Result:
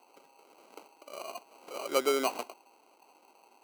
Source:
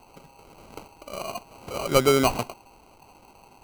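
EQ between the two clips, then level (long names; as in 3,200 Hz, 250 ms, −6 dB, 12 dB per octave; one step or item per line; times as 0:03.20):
high-pass filter 290 Hz 24 dB per octave
−8.0 dB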